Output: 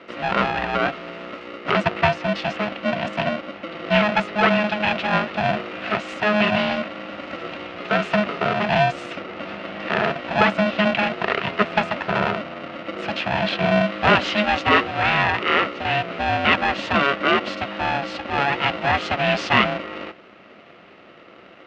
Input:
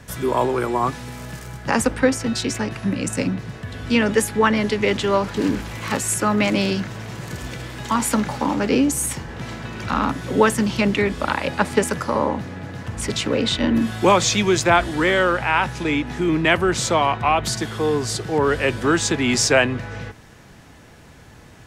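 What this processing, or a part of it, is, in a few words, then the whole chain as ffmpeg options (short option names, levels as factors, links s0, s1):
ring modulator pedal into a guitar cabinet: -af "aeval=exprs='val(0)*sgn(sin(2*PI*420*n/s))':c=same,highpass=89,equalizer=f=200:t=q:w=4:g=8,equalizer=f=400:t=q:w=4:g=8,equalizer=f=680:t=q:w=4:g=7,equalizer=f=1300:t=q:w=4:g=7,equalizer=f=1900:t=q:w=4:g=5,equalizer=f=2700:t=q:w=4:g=9,lowpass=f=4100:w=0.5412,lowpass=f=4100:w=1.3066,volume=0.531"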